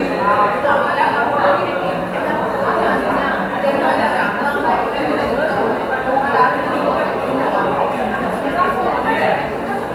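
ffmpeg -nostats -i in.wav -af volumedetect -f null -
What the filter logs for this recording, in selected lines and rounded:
mean_volume: -16.7 dB
max_volume: -1.4 dB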